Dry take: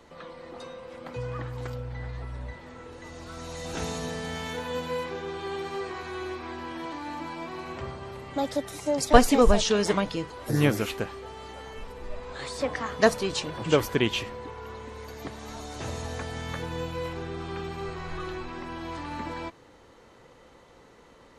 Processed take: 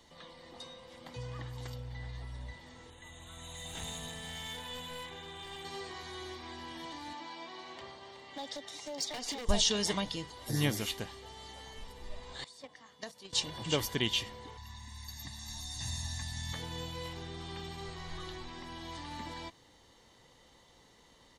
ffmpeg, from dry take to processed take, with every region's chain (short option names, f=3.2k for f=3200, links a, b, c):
-filter_complex "[0:a]asettb=1/sr,asplit=3[a][b][c];[a]atrim=end=2.904[d];[b]atrim=start=2.9:end=5.65,asetpts=PTS-STARTPTS,afade=t=in:d=0.004:c=qsin,afade=t=out:st=2.746:d=0.004:c=qsin,asuperstop=centerf=5100:order=8:qfactor=1.9,equalizer=f=320:t=o:w=1.8:g=-5.5,aeval=exprs='clip(val(0),-1,0.0178)':c=same[e];[c]atrim=start=5.646[f];[d][e]acrossfade=d=0.004:c1=hsin:c2=qsin[g];[g][f]acrossfade=d=0.004:c1=qsin:c2=hsin,asettb=1/sr,asplit=3[h][i][j];[h]atrim=end=7.134[k];[i]atrim=start=7.13:end=9.49,asetpts=PTS-STARTPTS,afade=t=in:d=0.004:c=qsin,afade=t=out:st=2.356:d=0.004:c=qsin,acrossover=split=260 6900:gain=0.141 1 0.0631[l][m][n];[l][m][n]amix=inputs=3:normalize=0,acompressor=threshold=-28dB:ratio=4:attack=3.2:release=140:knee=1:detection=peak,aeval=exprs='0.0501*(abs(mod(val(0)/0.0501+3,4)-2)-1)':c=same[o];[j]atrim=start=9.486[p];[k][o]acrossfade=d=0.004:c1=hsin:c2=qsin[q];[q][p]acrossfade=d=0.004:c1=qsin:c2=hsin,asettb=1/sr,asplit=3[r][s][t];[r]atrim=end=12.444[u];[s]atrim=start=12.44:end=13.33,asetpts=PTS-STARTPTS,afade=t=in:d=0.004:c=qsin,afade=t=out:st=0.886:d=0.004:c=qsin,highpass=150,agate=range=-16dB:threshold=-25dB:ratio=16:release=100:detection=peak,acompressor=threshold=-32dB:ratio=6:attack=3.2:release=140:knee=1:detection=peak[v];[t]atrim=start=13.326[w];[u][v]acrossfade=d=0.004:c1=hsin:c2=qsin[x];[x][w]acrossfade=d=0.004:c1=qsin:c2=hsin,asettb=1/sr,asplit=3[y][z][aa];[y]atrim=end=14.574[ab];[z]atrim=start=14.57:end=16.53,asetpts=PTS-STARTPTS,afade=t=in:d=0.004:c=qsin,afade=t=out:st=1.956:d=0.004:c=qsin,equalizer=f=560:w=0.57:g=-13,bandreject=f=3k:w=6.1,aecho=1:1:1.1:0.92,atrim=end_sample=86436[ac];[aa]atrim=start=16.526[ad];[ab][ac]acrossfade=d=0.004:c1=hsin:c2=qsin[ae];[ae][ad]acrossfade=d=0.004:c1=qsin:c2=hsin,highshelf=f=2.1k:t=q:w=1.5:g=8,bandreject=f=2.6k:w=5.4,aecho=1:1:1.1:0.31,volume=-8.5dB"